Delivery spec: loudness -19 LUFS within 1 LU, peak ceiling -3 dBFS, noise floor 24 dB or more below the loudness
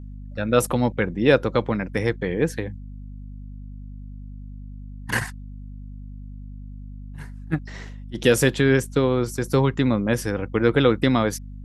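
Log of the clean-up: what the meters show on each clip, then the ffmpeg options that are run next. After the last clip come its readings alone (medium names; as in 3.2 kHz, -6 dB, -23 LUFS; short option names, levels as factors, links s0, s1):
hum 50 Hz; highest harmonic 250 Hz; hum level -34 dBFS; loudness -22.0 LUFS; peak level -2.5 dBFS; loudness target -19.0 LUFS
-> -af "bandreject=f=50:t=h:w=6,bandreject=f=100:t=h:w=6,bandreject=f=150:t=h:w=6,bandreject=f=200:t=h:w=6,bandreject=f=250:t=h:w=6"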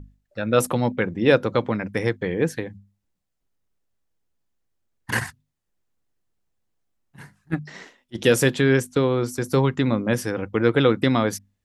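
hum not found; loudness -22.0 LUFS; peak level -3.0 dBFS; loudness target -19.0 LUFS
-> -af "volume=1.41,alimiter=limit=0.708:level=0:latency=1"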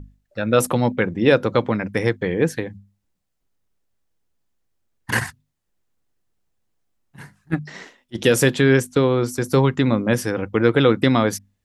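loudness -19.5 LUFS; peak level -3.0 dBFS; noise floor -75 dBFS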